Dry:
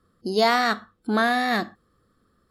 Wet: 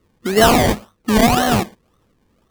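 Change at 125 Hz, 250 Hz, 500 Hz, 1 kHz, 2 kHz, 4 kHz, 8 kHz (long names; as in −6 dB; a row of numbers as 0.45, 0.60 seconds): +17.5, +9.5, +8.0, +5.5, +2.5, +6.5, +18.5 decibels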